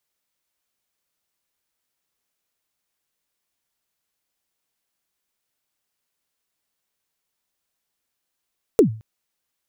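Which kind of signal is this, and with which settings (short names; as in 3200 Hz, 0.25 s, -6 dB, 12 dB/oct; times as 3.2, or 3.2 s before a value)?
kick drum length 0.22 s, from 490 Hz, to 110 Hz, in 0.105 s, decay 0.38 s, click on, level -6 dB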